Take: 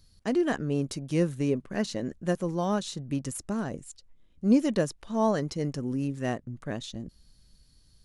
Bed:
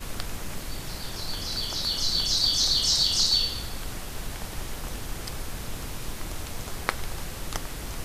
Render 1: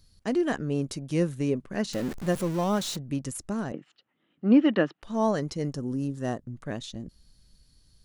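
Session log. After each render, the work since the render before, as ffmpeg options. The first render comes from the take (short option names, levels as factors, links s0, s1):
-filter_complex "[0:a]asettb=1/sr,asplit=3[s0][s1][s2];[s0]atrim=end=1.934[s3];[s1]atrim=start=1.93:end=2.97,asetpts=PTS-STARTPTS,afade=t=in:d=0.004:c=qsin,afade=t=out:st=1.036:d=0.004:c=qsin,aeval=exprs='val(0)+0.5*0.0224*sgn(val(0))':c=same[s4];[s2]atrim=start=2.966[s5];[s3][s4]acrossfade=d=0.004:c1=hsin:c2=qsin[s6];[s6][s5]acrossfade=d=0.004:c1=qsin:c2=hsin,asettb=1/sr,asplit=3[s7][s8][s9];[s7]atrim=end=3.724[s10];[s8]atrim=start=3.72:end=5.03,asetpts=PTS-STARTPTS,afade=t=in:d=0.004:c=qsin,afade=t=out:st=1.306:d=0.004:c=qsin,highpass=f=160:w=0.5412,highpass=f=160:w=1.3066,equalizer=f=310:t=q:w=4:g=7,equalizer=f=780:t=q:w=4:g=6,equalizer=f=1300:t=q:w=4:g=9,equalizer=f=1800:t=q:w=4:g=7,equalizer=f=2900:t=q:w=4:g=8,lowpass=f=3500:w=0.5412,lowpass=f=3500:w=1.3066[s11];[s9]atrim=start=5.026[s12];[s10][s11]acrossfade=d=0.004:c1=hsin:c2=qsin[s13];[s13][s12]acrossfade=d=0.004:c1=qsin:c2=hsin,asettb=1/sr,asplit=3[s14][s15][s16];[s14]atrim=end=5.714[s17];[s15]atrim=start=5.71:end=6.45,asetpts=PTS-STARTPTS,afade=t=in:d=0.004:c=qsin,afade=t=out:st=0.736:d=0.004:c=qsin,equalizer=f=2300:t=o:w=0.45:g=-12.5[s18];[s16]atrim=start=6.446[s19];[s17][s18]acrossfade=d=0.004:c1=hsin:c2=qsin[s20];[s20][s19]acrossfade=d=0.004:c1=qsin:c2=hsin"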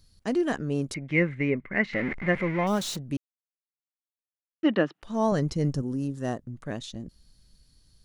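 -filter_complex "[0:a]asettb=1/sr,asplit=3[s0][s1][s2];[s0]atrim=end=0.944[s3];[s1]atrim=start=0.94:end=2.67,asetpts=PTS-STARTPTS,afade=t=in:d=0.004:c=qsin,afade=t=out:st=1.726:d=0.004:c=qsin,lowpass=f=2100:t=q:w=15[s4];[s2]atrim=start=2.666[s5];[s3][s4]acrossfade=d=0.004:c1=hsin:c2=qsin[s6];[s6][s5]acrossfade=d=0.004:c1=qsin:c2=hsin,asettb=1/sr,asplit=3[s7][s8][s9];[s7]atrim=end=5.324[s10];[s8]atrim=start=5.32:end=5.82,asetpts=PTS-STARTPTS,afade=t=in:d=0.004:c=qsin,afade=t=out:st=0.496:d=0.004:c=qsin,lowshelf=f=180:g=11[s11];[s9]atrim=start=5.816[s12];[s10][s11]acrossfade=d=0.004:c1=hsin:c2=qsin[s13];[s13][s12]acrossfade=d=0.004:c1=qsin:c2=hsin,asplit=3[s14][s15][s16];[s14]atrim=end=3.17,asetpts=PTS-STARTPTS,afade=t=out:st=3.166:d=0.004:c=hsin[s17];[s15]atrim=start=3.17:end=4.63,asetpts=PTS-STARTPTS,volume=0[s18];[s16]atrim=start=4.63,asetpts=PTS-STARTPTS,afade=t=in:d=0.004:c=hsin[s19];[s17][s18][s19]concat=n=3:v=0:a=1"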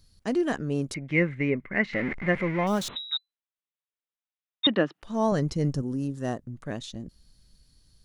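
-filter_complex "[0:a]asettb=1/sr,asplit=3[s0][s1][s2];[s0]atrim=end=2.884[s3];[s1]atrim=start=2.88:end=4.67,asetpts=PTS-STARTPTS,afade=t=in:d=0.004:c=qsin,afade=t=out:st=1.786:d=0.004:c=qsin,lowpass=f=3400:t=q:w=0.5098,lowpass=f=3400:t=q:w=0.6013,lowpass=f=3400:t=q:w=0.9,lowpass=f=3400:t=q:w=2.563,afreqshift=-4000[s4];[s2]atrim=start=4.666[s5];[s3][s4]acrossfade=d=0.004:c1=hsin:c2=qsin[s6];[s6][s5]acrossfade=d=0.004:c1=qsin:c2=hsin"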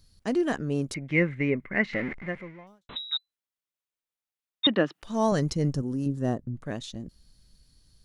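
-filter_complex "[0:a]asettb=1/sr,asplit=3[s0][s1][s2];[s0]atrim=end=4.844[s3];[s1]atrim=start=4.84:end=5.53,asetpts=PTS-STARTPTS,afade=t=in:d=0.004:c=qsin,afade=t=out:st=0.686:d=0.004:c=qsin,highshelf=f=2600:g=6[s4];[s2]atrim=start=5.526[s5];[s3][s4]acrossfade=d=0.004:c1=hsin:c2=qsin[s6];[s6][s5]acrossfade=d=0.004:c1=qsin:c2=hsin,asettb=1/sr,asplit=3[s7][s8][s9];[s7]atrim=end=6.064[s10];[s8]atrim=start=6.06:end=6.64,asetpts=PTS-STARTPTS,afade=t=in:d=0.004:c=qsin,afade=t=out:st=0.576:d=0.004:c=qsin,tiltshelf=f=740:g=5[s11];[s9]atrim=start=6.636[s12];[s10][s11]acrossfade=d=0.004:c1=hsin:c2=qsin[s13];[s13][s12]acrossfade=d=0.004:c1=qsin:c2=hsin,asplit=2[s14][s15];[s14]atrim=end=2.89,asetpts=PTS-STARTPTS,afade=t=out:st=1.92:d=0.97:c=qua[s16];[s15]atrim=start=2.89,asetpts=PTS-STARTPTS,afade=t=in:d=0.004:c=hsin[s17];[s16][s17]concat=n=2:v=0:a=1"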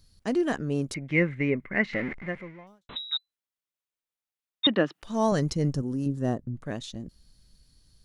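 -af anull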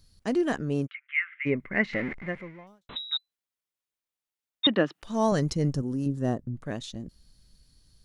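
-filter_complex "[0:a]asplit=3[s0][s1][s2];[s0]afade=t=out:st=0.86:d=0.02[s3];[s1]asuperpass=centerf=2000:order=12:qfactor=1,afade=t=in:st=0.86:d=0.02,afade=t=out:st=1.45:d=0.02[s4];[s2]afade=t=in:st=1.45:d=0.02[s5];[s3][s4][s5]amix=inputs=3:normalize=0"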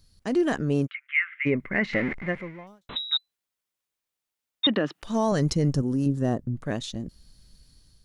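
-af "alimiter=limit=0.119:level=0:latency=1:release=35,dynaudnorm=f=140:g=5:m=1.68"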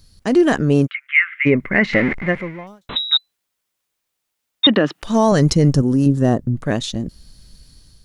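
-af "volume=2.99"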